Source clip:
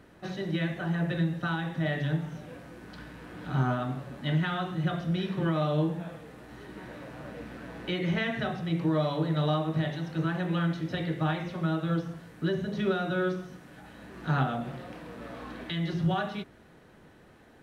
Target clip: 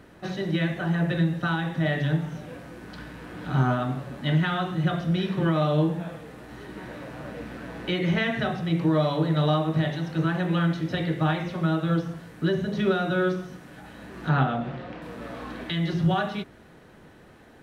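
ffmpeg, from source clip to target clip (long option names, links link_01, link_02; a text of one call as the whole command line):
ffmpeg -i in.wav -filter_complex "[0:a]asettb=1/sr,asplit=3[link_01][link_02][link_03];[link_01]atrim=end=14.294[link_04];[link_02]atrim=start=14.29:end=15.02,asetpts=PTS-STARTPTS,afade=type=in:duration=0.004:curve=qsin,afade=type=out:start_time=0.726:duration=0.004:curve=qsin,lowpass=4100[link_05];[link_03]atrim=start=15.016[link_06];[link_04][link_05]acrossfade=duration=0.004:curve1=hsin:curve2=qsin[link_07];[link_07][link_06]acrossfade=duration=0.004:curve1=qsin:curve2=hsin,volume=4.5dB" out.wav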